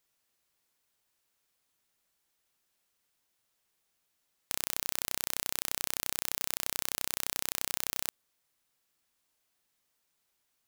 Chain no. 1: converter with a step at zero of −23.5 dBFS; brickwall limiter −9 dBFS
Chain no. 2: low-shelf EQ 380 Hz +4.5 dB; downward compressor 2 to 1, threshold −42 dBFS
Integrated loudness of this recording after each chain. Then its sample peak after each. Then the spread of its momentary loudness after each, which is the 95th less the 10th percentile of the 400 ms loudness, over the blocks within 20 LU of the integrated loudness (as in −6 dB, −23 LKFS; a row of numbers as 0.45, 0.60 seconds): −27.5, −42.0 LKFS; −9.0, −11.5 dBFS; 3, 1 LU